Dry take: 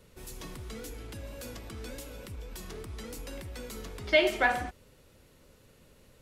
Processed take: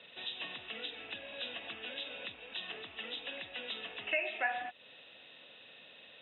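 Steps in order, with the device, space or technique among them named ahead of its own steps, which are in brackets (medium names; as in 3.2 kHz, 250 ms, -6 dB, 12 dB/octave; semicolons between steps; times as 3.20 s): hearing aid with frequency lowering (knee-point frequency compression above 2.5 kHz 4:1; compression 3:1, threshold -43 dBFS, peak gain reduction 18.5 dB; cabinet simulation 300–6500 Hz, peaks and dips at 380 Hz -6 dB, 710 Hz +9 dB, 1.8 kHz +10 dB, 2.6 kHz +10 dB, 3.9 kHz +6 dB)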